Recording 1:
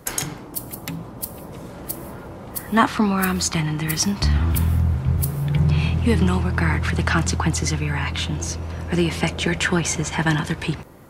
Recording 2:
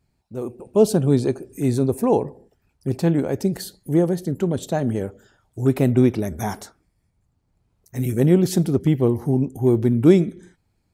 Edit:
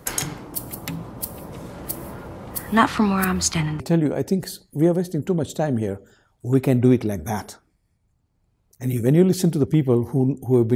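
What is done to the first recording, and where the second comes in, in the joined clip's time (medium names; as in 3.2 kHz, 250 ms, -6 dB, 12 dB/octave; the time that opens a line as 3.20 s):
recording 1
3.24–3.80 s: three bands expanded up and down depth 100%
3.80 s: go over to recording 2 from 2.93 s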